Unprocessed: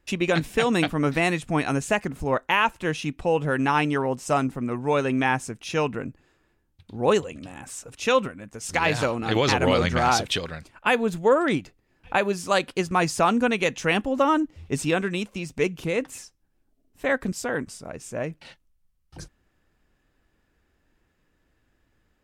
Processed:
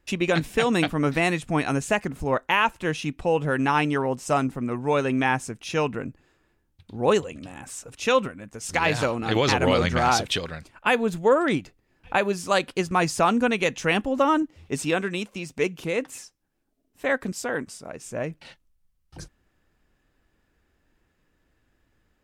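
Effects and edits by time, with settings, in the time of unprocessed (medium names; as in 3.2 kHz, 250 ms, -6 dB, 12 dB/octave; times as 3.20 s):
14.42–18.03 s: bass shelf 110 Hz -10.5 dB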